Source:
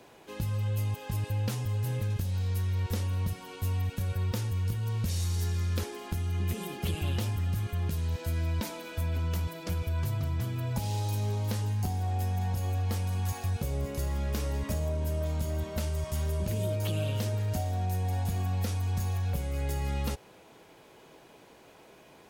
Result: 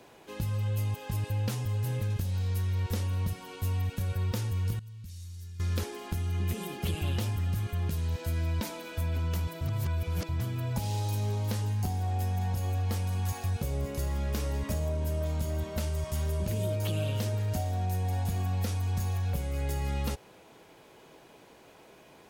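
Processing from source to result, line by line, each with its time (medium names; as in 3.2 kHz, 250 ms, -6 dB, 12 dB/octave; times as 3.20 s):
4.79–5.60 s: amplifier tone stack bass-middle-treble 6-0-2
9.61–10.29 s: reverse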